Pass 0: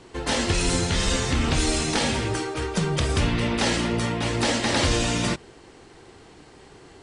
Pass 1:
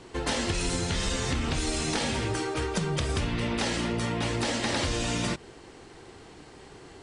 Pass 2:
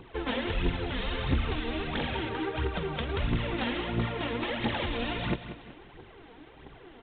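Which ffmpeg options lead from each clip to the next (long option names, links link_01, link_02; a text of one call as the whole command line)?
ffmpeg -i in.wav -af "acompressor=threshold=-25dB:ratio=6" out.wav
ffmpeg -i in.wav -filter_complex "[0:a]aphaser=in_gain=1:out_gain=1:delay=4.5:decay=0.64:speed=1.5:type=triangular,asplit=2[link_01][link_02];[link_02]aecho=0:1:186|372|558|744:0.266|0.104|0.0405|0.0158[link_03];[link_01][link_03]amix=inputs=2:normalize=0,volume=-4.5dB" -ar 8000 -c:a adpcm_g726 -b:a 24k out.wav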